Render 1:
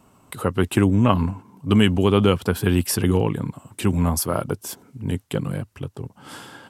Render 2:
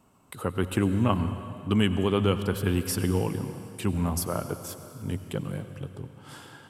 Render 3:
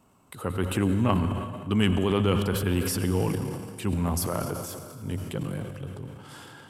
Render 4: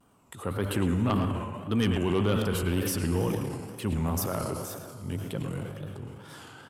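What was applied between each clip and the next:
convolution reverb RT60 2.9 s, pre-delay 78 ms, DRR 10 dB; level −7 dB
transient designer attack −2 dB, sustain +8 dB
tape wow and flutter 140 cents; far-end echo of a speakerphone 110 ms, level −7 dB; sine wavefolder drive 3 dB, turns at −8.5 dBFS; level −8.5 dB

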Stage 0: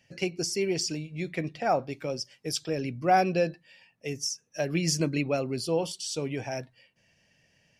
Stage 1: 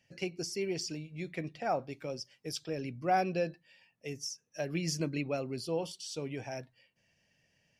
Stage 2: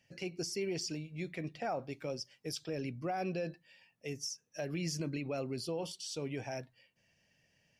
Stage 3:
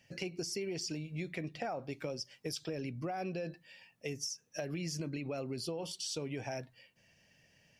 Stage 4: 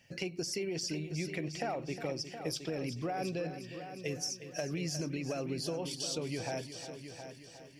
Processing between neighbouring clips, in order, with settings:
dynamic equaliser 8,200 Hz, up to −4 dB, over −48 dBFS, Q 1.4; level −6.5 dB
brickwall limiter −28 dBFS, peak gain reduction 11 dB
downward compressor, threshold −41 dBFS, peak gain reduction 8.5 dB; level +5.5 dB
echo machine with several playback heads 359 ms, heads first and second, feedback 46%, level −12 dB; level +2 dB

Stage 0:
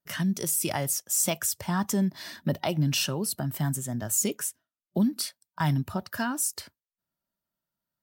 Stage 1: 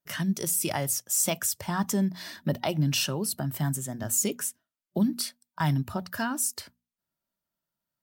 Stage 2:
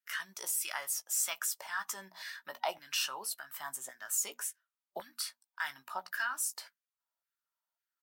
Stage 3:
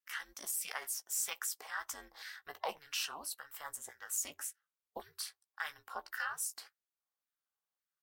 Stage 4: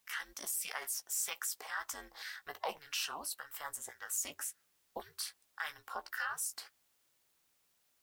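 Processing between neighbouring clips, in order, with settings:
mains-hum notches 60/120/180/240 Hz
auto-filter high-pass saw down 1.8 Hz 730–1,800 Hz; double-tracking delay 16 ms −9.5 dB; level −7 dB
ring modulation 150 Hz; level −1 dB
in parallel at +0.5 dB: brickwall limiter −32 dBFS, peak gain reduction 9.5 dB; on the sum: bit-depth reduction 12 bits, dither triangular; level −3.5 dB

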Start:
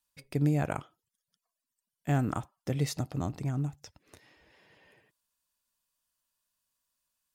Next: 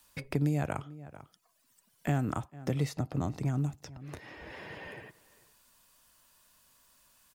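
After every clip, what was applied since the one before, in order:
slap from a distant wall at 76 metres, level −24 dB
multiband upward and downward compressor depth 70%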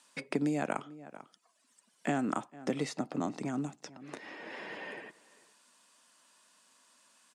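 Chebyshev band-pass filter 220–8,800 Hz, order 3
level +2.5 dB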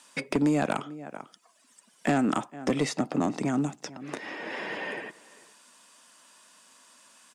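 notch filter 4,200 Hz, Q 19
in parallel at −8.5 dB: sine wavefolder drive 9 dB, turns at −15.5 dBFS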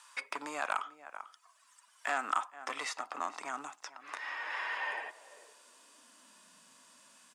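harmonic and percussive parts rebalanced harmonic +5 dB
high-pass filter sweep 1,100 Hz → 73 Hz, 0:04.75–0:07.30
level −7 dB

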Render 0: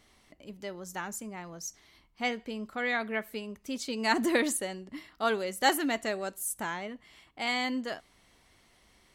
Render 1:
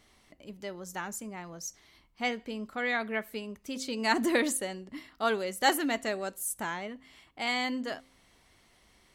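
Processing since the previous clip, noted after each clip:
hum removal 261.8 Hz, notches 2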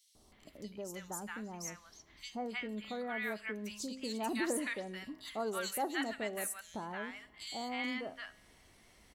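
three-band delay without the direct sound highs, lows, mids 150/320 ms, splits 1,100/3,700 Hz
downward compressor 1.5 to 1, threshold −49 dBFS, peak gain reduction 9.5 dB
tuned comb filter 210 Hz, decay 0.97 s, mix 50%
level +7 dB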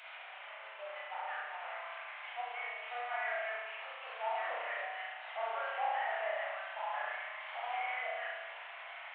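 linear delta modulator 16 kbit/s, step −44.5 dBFS
Butterworth high-pass 620 Hz 48 dB per octave
spring reverb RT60 1.3 s, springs 33 ms, chirp 50 ms, DRR −5 dB

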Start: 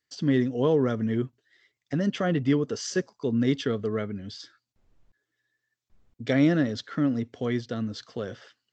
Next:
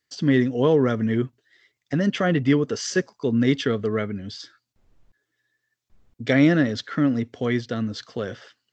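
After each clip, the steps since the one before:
dynamic equaliser 2,000 Hz, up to +4 dB, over −48 dBFS, Q 1.3
level +4 dB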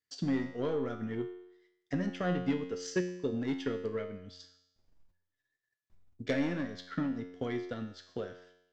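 soft clipping −14.5 dBFS, distortion −14 dB
transient designer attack +7 dB, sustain −6 dB
tuned comb filter 90 Hz, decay 0.81 s, harmonics all, mix 80%
level −2.5 dB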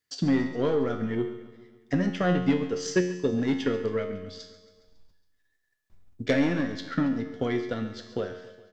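repeating echo 138 ms, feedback 60%, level −16 dB
level +7.5 dB

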